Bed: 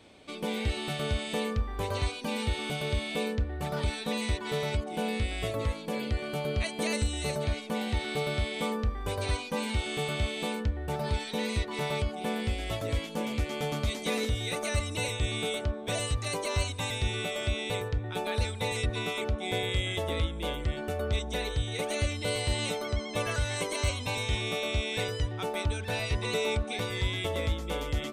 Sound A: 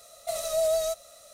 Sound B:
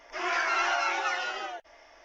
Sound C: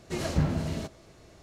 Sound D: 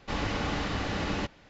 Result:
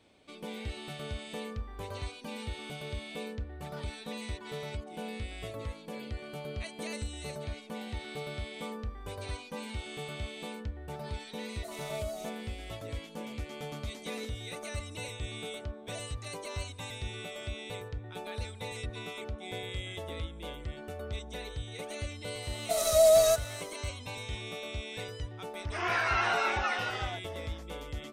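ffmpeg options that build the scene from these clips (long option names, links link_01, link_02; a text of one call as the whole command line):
ffmpeg -i bed.wav -i cue0.wav -i cue1.wav -filter_complex "[1:a]asplit=2[link_01][link_02];[0:a]volume=-8.5dB[link_03];[link_02]dynaudnorm=framelen=130:gausssize=5:maxgain=7.5dB[link_04];[2:a]acrossover=split=4400[link_05][link_06];[link_06]acompressor=threshold=-51dB:ratio=4:attack=1:release=60[link_07];[link_05][link_07]amix=inputs=2:normalize=0[link_08];[link_01]atrim=end=1.33,asetpts=PTS-STARTPTS,volume=-14.5dB,afade=type=in:duration=0.004:curve=hsin,afade=type=out:start_time=1.326:duration=0.004:curve=hsin,adelay=11360[link_09];[link_04]atrim=end=1.33,asetpts=PTS-STARTPTS,volume=-3dB,afade=type=in:duration=0.004:curve=hsin,afade=type=out:start_time=1.326:duration=0.004:curve=hsin,adelay=22420[link_10];[link_08]atrim=end=2.04,asetpts=PTS-STARTPTS,volume=-1.5dB,afade=type=in:duration=0.004:curve=hsin,afade=type=out:start_time=2.036:duration=0.004:curve=hsin,adelay=25590[link_11];[link_03][link_09][link_10][link_11]amix=inputs=4:normalize=0" out.wav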